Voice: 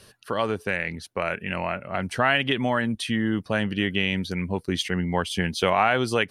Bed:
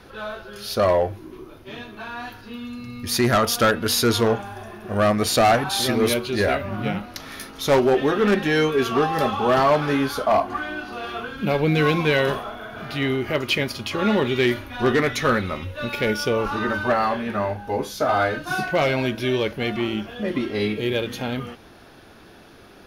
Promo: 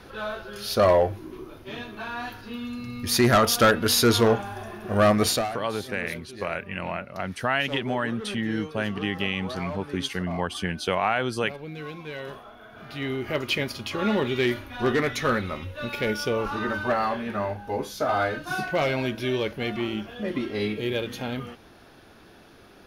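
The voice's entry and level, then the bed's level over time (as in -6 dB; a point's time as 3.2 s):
5.25 s, -3.5 dB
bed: 5.3 s 0 dB
5.52 s -18 dB
12.04 s -18 dB
13.35 s -4 dB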